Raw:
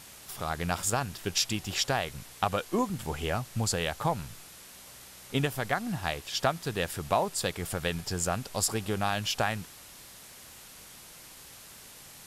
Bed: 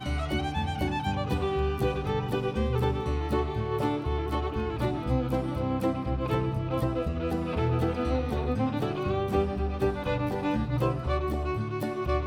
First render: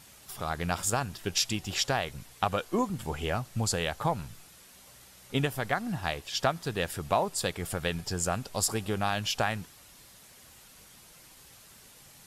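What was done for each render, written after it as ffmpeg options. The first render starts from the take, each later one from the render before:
-af "afftdn=nr=6:nf=-50"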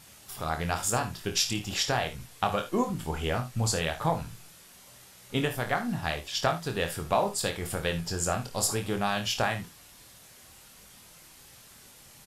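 -filter_complex "[0:a]asplit=2[a][b];[b]adelay=25,volume=-6.5dB[c];[a][c]amix=inputs=2:normalize=0,aecho=1:1:54|71:0.251|0.15"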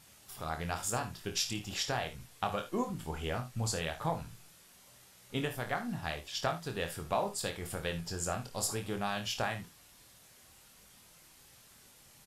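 -af "volume=-6.5dB"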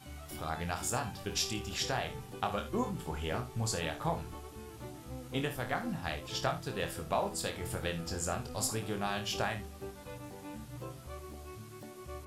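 -filter_complex "[1:a]volume=-17.5dB[a];[0:a][a]amix=inputs=2:normalize=0"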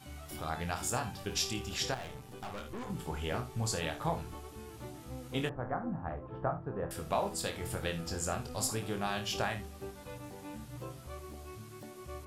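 -filter_complex "[0:a]asettb=1/sr,asplit=3[a][b][c];[a]atrim=end=1.944[d];[b]atrim=start=1.94:end=2.9,asetpts=PTS-STARTPTS,afade=t=in:d=0.004:c=qsin,afade=t=out:st=0.956:d=0.004:c=qsin,aeval=exprs='(tanh(89.1*val(0)+0.6)-tanh(0.6))/89.1':c=same[e];[c]atrim=start=2.896[f];[d][e]acrossfade=d=0.004:c1=hsin:c2=qsin[g];[g][f]acrossfade=d=0.004:c1=qsin:c2=hsin,asettb=1/sr,asplit=3[h][i][j];[h]atrim=end=5.494[k];[i]atrim=start=5.49:end=6.91,asetpts=PTS-STARTPTS,afade=t=in:d=0.004:c=qsin,afade=t=out:st=1.416:d=0.004:c=qsin,lowpass=f=1.3k:w=0.5412,lowpass=f=1.3k:w=1.3066[l];[j]atrim=start=6.906[m];[k][l]acrossfade=d=0.004:c1=hsin:c2=qsin[n];[n][m]acrossfade=d=0.004:c1=qsin:c2=hsin"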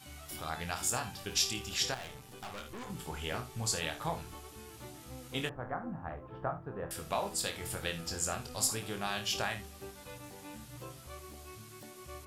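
-af "tiltshelf=f=1.4k:g=-4"

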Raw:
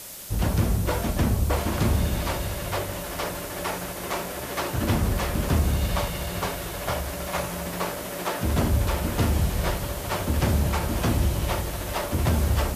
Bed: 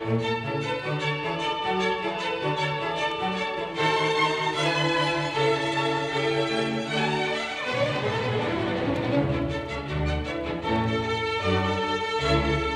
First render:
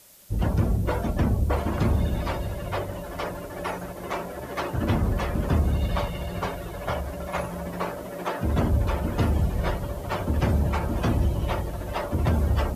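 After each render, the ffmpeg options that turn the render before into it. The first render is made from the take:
-af "afftdn=nr=13:nf=-34"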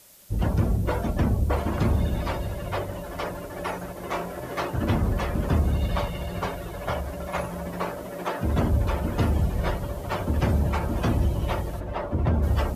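-filter_complex "[0:a]asettb=1/sr,asplit=3[a][b][c];[a]atrim=end=4.084[d];[b]atrim=start=4.08:end=4.65,asetpts=PTS-STARTPTS,afade=t=in:d=0.004:c=qsin,afade=t=out:st=0.566:d=0.004:c=qsin,asplit=2[e][f];[f]adelay=23,volume=-7dB[g];[e][g]amix=inputs=2:normalize=0,atrim=end_sample=25137[h];[c]atrim=start=4.646[i];[d][h]acrossfade=d=0.004:c1=hsin:c2=qsin[j];[j][i]acrossfade=d=0.004:c1=qsin:c2=hsin,asplit=3[k][l][m];[k]afade=t=out:st=11.79:d=0.02[n];[l]lowpass=f=1.5k:p=1,afade=t=in:st=11.79:d=0.02,afade=t=out:st=12.42:d=0.02[o];[m]afade=t=in:st=12.42:d=0.02[p];[n][o][p]amix=inputs=3:normalize=0"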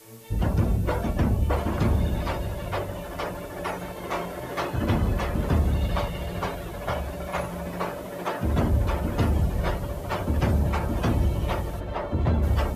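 -filter_complex "[1:a]volume=-21.5dB[a];[0:a][a]amix=inputs=2:normalize=0"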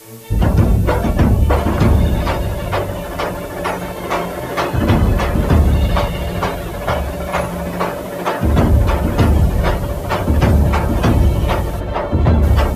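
-af "volume=10.5dB"

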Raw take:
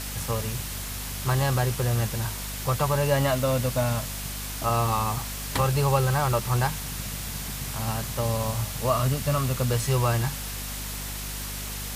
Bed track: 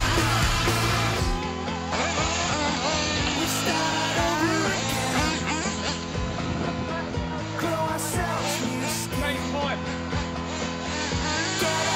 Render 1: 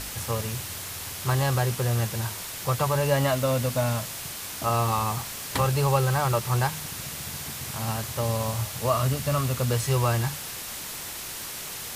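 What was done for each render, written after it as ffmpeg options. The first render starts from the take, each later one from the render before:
-af "bandreject=f=50:t=h:w=4,bandreject=f=100:t=h:w=4,bandreject=f=150:t=h:w=4,bandreject=f=200:t=h:w=4,bandreject=f=250:t=h:w=4"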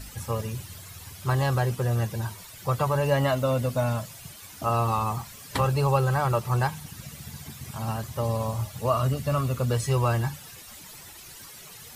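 -af "afftdn=nr=13:nf=-36"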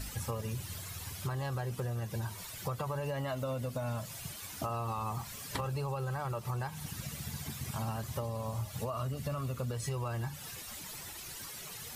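-af "alimiter=limit=-19.5dB:level=0:latency=1:release=175,acompressor=threshold=-33dB:ratio=6"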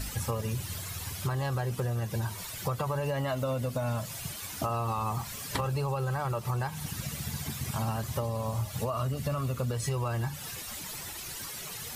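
-af "volume=5dB"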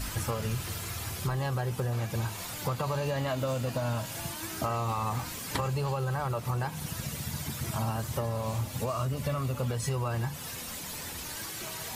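-filter_complex "[1:a]volume=-19.5dB[a];[0:a][a]amix=inputs=2:normalize=0"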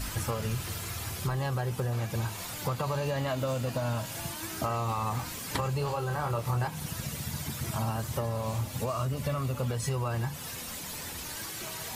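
-filter_complex "[0:a]asettb=1/sr,asplit=3[a][b][c];[a]atrim=end=5.784[d];[b]atrim=start=5.78:end=6.68,asetpts=PTS-STARTPTS,afade=t=in:d=0.004:c=qsin,afade=t=out:st=0.896:d=0.004:c=qsin,asplit=2[e][f];[f]adelay=26,volume=-5dB[g];[e][g]amix=inputs=2:normalize=0,atrim=end_sample=39690[h];[c]atrim=start=6.676[i];[d][h]acrossfade=d=0.004:c1=hsin:c2=qsin[j];[j][i]acrossfade=d=0.004:c1=qsin:c2=hsin"

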